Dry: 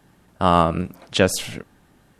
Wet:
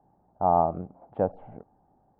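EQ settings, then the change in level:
transistor ladder low-pass 860 Hz, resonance 70%
high-frequency loss of the air 100 metres
0.0 dB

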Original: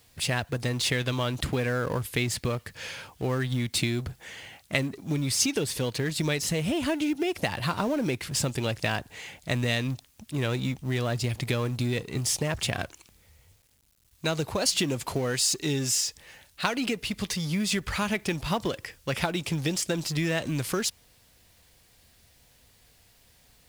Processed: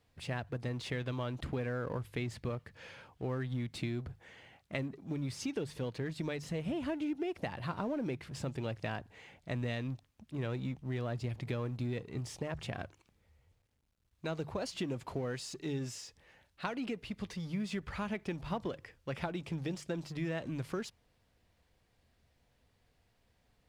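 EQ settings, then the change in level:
low-pass filter 1,400 Hz 6 dB per octave
mains-hum notches 50/100/150 Hz
−8.0 dB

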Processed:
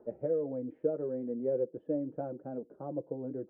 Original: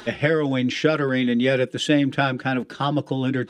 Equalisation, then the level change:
transistor ladder low-pass 600 Hz, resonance 50%
low-shelf EQ 280 Hz −9.5 dB
−4.0 dB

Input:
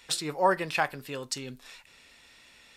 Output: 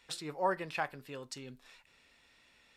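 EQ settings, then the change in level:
high-shelf EQ 4,000 Hz −6.5 dB
−7.5 dB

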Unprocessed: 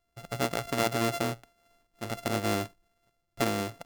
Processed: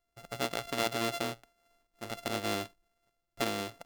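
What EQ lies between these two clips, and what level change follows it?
dynamic equaliser 3,500 Hz, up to +5 dB, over −47 dBFS, Q 1.5
parametric band 120 Hz −5.5 dB 1.7 octaves
−4.0 dB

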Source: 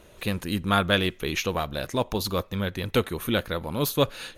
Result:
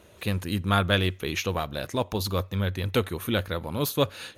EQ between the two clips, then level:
high-pass filter 62 Hz
parametric band 94 Hz +8.5 dB 0.29 octaves
−1.5 dB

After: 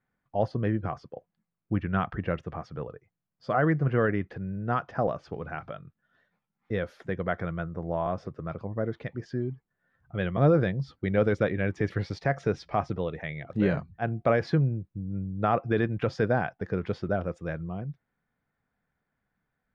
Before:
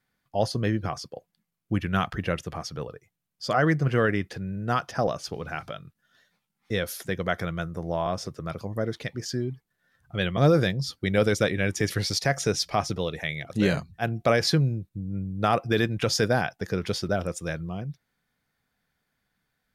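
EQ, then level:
low-pass filter 1,700 Hz 12 dB per octave
−1.5 dB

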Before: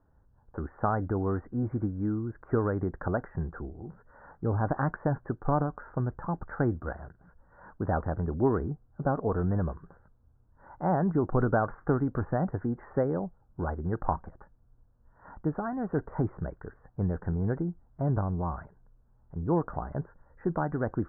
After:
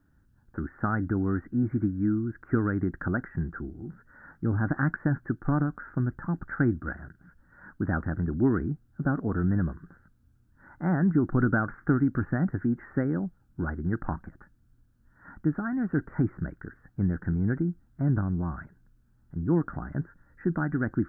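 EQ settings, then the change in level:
low-shelf EQ 130 Hz −11 dB
flat-topped bell 680 Hz −15.5 dB
+8.0 dB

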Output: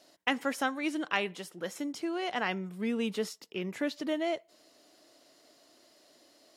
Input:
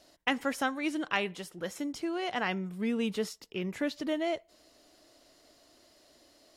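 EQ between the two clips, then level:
high-pass filter 170 Hz 12 dB per octave
0.0 dB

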